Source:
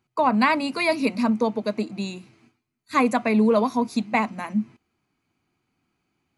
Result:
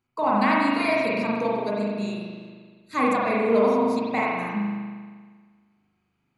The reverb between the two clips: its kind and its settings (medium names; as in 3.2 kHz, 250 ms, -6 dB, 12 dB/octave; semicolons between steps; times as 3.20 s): spring tank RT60 1.6 s, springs 39 ms, chirp 60 ms, DRR -5.5 dB; trim -6.5 dB